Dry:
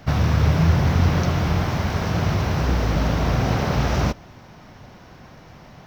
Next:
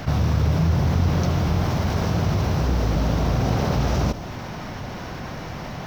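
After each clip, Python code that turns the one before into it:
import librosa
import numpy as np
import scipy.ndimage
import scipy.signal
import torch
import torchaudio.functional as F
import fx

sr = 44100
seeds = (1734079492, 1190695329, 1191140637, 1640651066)

y = fx.dynamic_eq(x, sr, hz=1900.0, q=0.79, threshold_db=-42.0, ratio=4.0, max_db=-5)
y = fx.env_flatten(y, sr, amount_pct=50)
y = y * 10.0 ** (-4.0 / 20.0)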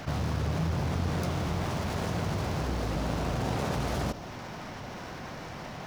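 y = fx.self_delay(x, sr, depth_ms=0.34)
y = fx.low_shelf(y, sr, hz=170.0, db=-7.0)
y = y * 10.0 ** (-5.5 / 20.0)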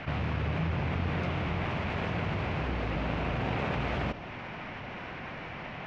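y = fx.lowpass_res(x, sr, hz=2500.0, q=2.5)
y = y * 10.0 ** (-1.5 / 20.0)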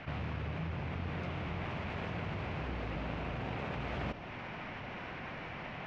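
y = fx.rider(x, sr, range_db=3, speed_s=0.5)
y = y * 10.0 ** (-6.0 / 20.0)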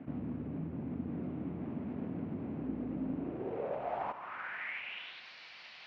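y = fx.filter_sweep_bandpass(x, sr, from_hz=260.0, to_hz=4500.0, start_s=3.16, end_s=5.28, q=4.0)
y = y * 10.0 ** (11.0 / 20.0)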